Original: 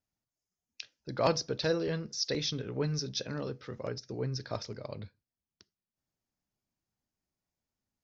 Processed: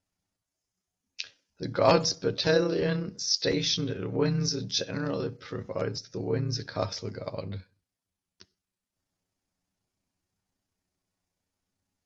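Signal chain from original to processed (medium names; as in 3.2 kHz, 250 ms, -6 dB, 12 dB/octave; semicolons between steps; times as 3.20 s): granular stretch 1.5×, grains 65 ms; trim +7 dB; AC-3 64 kbps 32 kHz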